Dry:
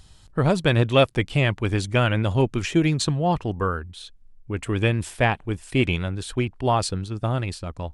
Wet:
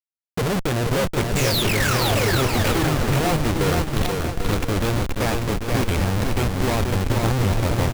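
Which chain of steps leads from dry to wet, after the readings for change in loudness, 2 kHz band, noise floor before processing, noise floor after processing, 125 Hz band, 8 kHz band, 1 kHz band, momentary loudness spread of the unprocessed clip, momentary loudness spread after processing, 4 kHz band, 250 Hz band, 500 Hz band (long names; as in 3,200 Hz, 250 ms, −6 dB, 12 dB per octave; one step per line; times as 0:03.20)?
+2.0 dB, +2.5 dB, −51 dBFS, −38 dBFS, +2.0 dB, +7.5 dB, +2.0 dB, 11 LU, 5 LU, +4.5 dB, +1.5 dB, +1.0 dB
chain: camcorder AGC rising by 23 dB per second
notch filter 1,100 Hz, Q 22
de-essing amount 60%
high-shelf EQ 5,800 Hz +5 dB
sound drawn into the spectrogram fall, 0:01.35–0:02.38, 300–7,900 Hz −21 dBFS
hollow resonant body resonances 460/2,200 Hz, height 7 dB, ringing for 25 ms
flanger 1.2 Hz, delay 8.1 ms, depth 2.9 ms, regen −43%
comparator with hysteresis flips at −26 dBFS
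bouncing-ball delay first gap 480 ms, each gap 0.65×, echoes 5
level +2 dB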